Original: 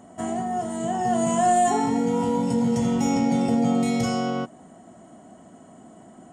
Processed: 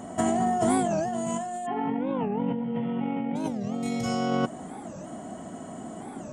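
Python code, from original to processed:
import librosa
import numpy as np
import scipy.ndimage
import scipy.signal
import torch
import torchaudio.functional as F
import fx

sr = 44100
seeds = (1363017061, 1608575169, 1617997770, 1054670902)

y = fx.cheby1_bandpass(x, sr, low_hz=130.0, high_hz=3100.0, order=5, at=(1.65, 3.35), fade=0.02)
y = fx.over_compress(y, sr, threshold_db=-30.0, ratio=-1.0)
y = fx.record_warp(y, sr, rpm=45.0, depth_cents=250.0)
y = y * 10.0 ** (2.0 / 20.0)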